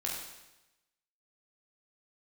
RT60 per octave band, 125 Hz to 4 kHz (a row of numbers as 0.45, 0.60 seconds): 1.0, 0.95, 1.0, 1.0, 1.0, 0.95 seconds